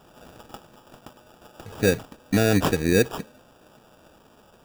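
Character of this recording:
aliases and images of a low sample rate 2,100 Hz, jitter 0%

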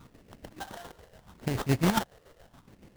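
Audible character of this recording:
chopped level 7.1 Hz, depth 60%, duty 50%
phaser sweep stages 6, 0.77 Hz, lowest notch 230–1,200 Hz
aliases and images of a low sample rate 2,400 Hz, jitter 20%

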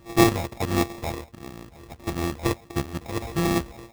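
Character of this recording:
a buzz of ramps at a fixed pitch in blocks of 128 samples
phaser sweep stages 6, 1.5 Hz, lowest notch 200–2,900 Hz
aliases and images of a low sample rate 1,500 Hz, jitter 0%

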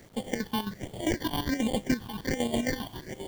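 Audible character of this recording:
aliases and images of a low sample rate 1,300 Hz, jitter 0%
phaser sweep stages 6, 1.3 Hz, lowest notch 510–1,600 Hz
chopped level 7.5 Hz, depth 65%, duty 55%
a quantiser's noise floor 10 bits, dither none

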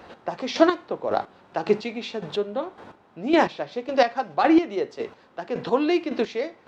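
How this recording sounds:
chopped level 1.8 Hz, depth 65%, duty 25%

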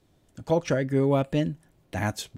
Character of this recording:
background noise floor −65 dBFS
spectral slope −6.5 dB per octave

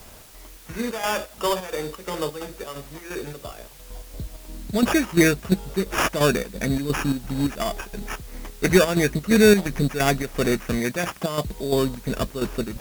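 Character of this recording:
aliases and images of a low sample rate 4,100 Hz, jitter 0%
chopped level 2.9 Hz, depth 60%, duty 65%
a quantiser's noise floor 8 bits, dither triangular
AAC

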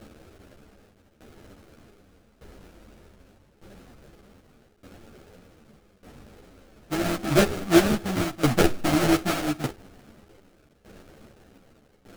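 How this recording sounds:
a quantiser's noise floor 8 bits, dither triangular
tremolo saw down 0.83 Hz, depth 85%
aliases and images of a low sample rate 1,000 Hz, jitter 20%
a shimmering, thickened sound

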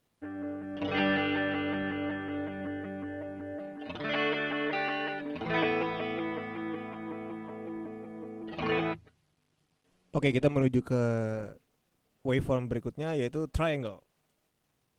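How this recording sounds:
a quantiser's noise floor 12 bits, dither none
Opus

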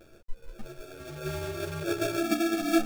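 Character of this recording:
a quantiser's noise floor 10 bits, dither none
tremolo saw down 1.6 Hz, depth 40%
aliases and images of a low sample rate 1,000 Hz, jitter 0%
a shimmering, thickened sound

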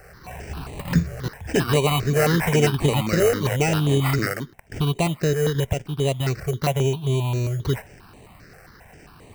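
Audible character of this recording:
aliases and images of a low sample rate 3,400 Hz, jitter 0%
notches that jump at a steady rate 7.5 Hz 980–5,200 Hz

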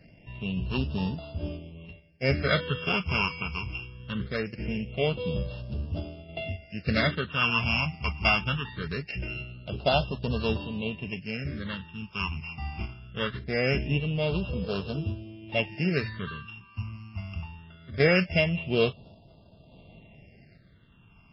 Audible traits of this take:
a buzz of ramps at a fixed pitch in blocks of 16 samples
sample-and-hold tremolo
phaser sweep stages 8, 0.22 Hz, lowest notch 500–2,100 Hz
MP3

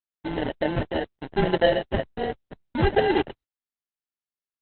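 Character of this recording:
a quantiser's noise floor 6 bits, dither none
phaser sweep stages 8, 2 Hz, lowest notch 640–1,300 Hz
aliases and images of a low sample rate 1,200 Hz, jitter 0%
Opus

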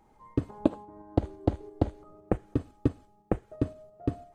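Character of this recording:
tremolo saw up 5.9 Hz, depth 35%

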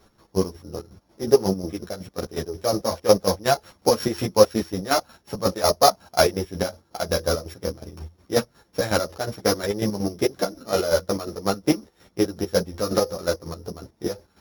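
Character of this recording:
a buzz of ramps at a fixed pitch in blocks of 8 samples
chopped level 5.5 Hz, depth 65%, duty 40%
a shimmering, thickened sound

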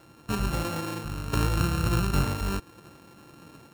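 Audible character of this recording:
a buzz of ramps at a fixed pitch in blocks of 32 samples
sample-and-hold tremolo 3 Hz

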